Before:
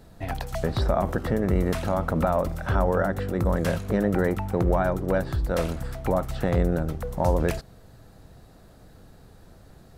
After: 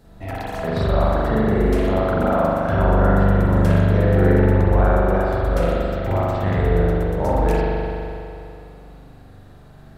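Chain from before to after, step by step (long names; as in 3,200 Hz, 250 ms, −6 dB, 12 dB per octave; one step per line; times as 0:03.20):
0:05.80–0:06.60: thirty-one-band graphic EQ 100 Hz +9 dB, 500 Hz −10 dB, 2,000 Hz +3 dB, 10,000 Hz −10 dB
spring reverb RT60 2.7 s, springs 41 ms, chirp 25 ms, DRR −8 dB
level −2.5 dB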